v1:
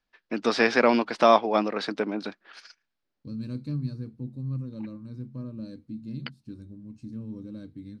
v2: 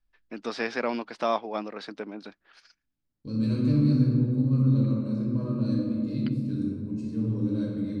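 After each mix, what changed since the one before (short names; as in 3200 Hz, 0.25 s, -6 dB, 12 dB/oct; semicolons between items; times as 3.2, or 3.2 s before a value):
first voice -8.5 dB; reverb: on, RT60 2.3 s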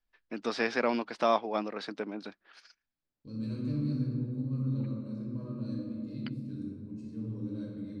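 second voice -10.0 dB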